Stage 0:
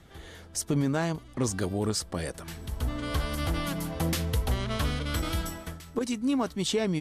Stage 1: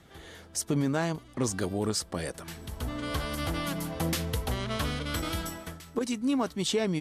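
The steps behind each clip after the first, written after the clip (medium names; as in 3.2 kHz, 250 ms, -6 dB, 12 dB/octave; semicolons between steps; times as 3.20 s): bass shelf 65 Hz -11 dB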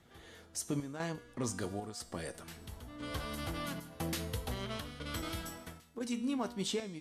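square tremolo 1 Hz, depth 60%, duty 80%; feedback comb 240 Hz, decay 0.9 s, mix 70%; flange 0.53 Hz, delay 8.1 ms, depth 2.3 ms, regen +74%; trim +7 dB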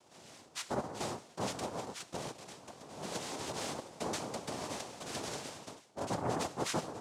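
noise-vocoded speech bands 2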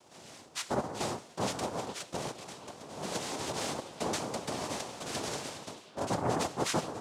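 repeats whose band climbs or falls 413 ms, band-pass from 3.2 kHz, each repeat -1.4 oct, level -12 dB; trim +4 dB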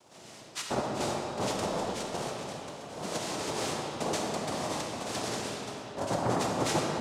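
reverberation RT60 3.1 s, pre-delay 5 ms, DRR 0 dB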